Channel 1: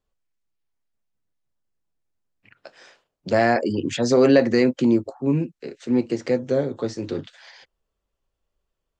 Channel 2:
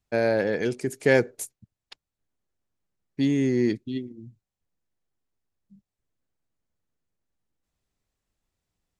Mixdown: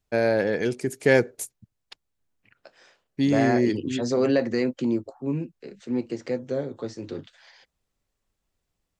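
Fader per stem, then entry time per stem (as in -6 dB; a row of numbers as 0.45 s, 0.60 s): -6.5 dB, +1.0 dB; 0.00 s, 0.00 s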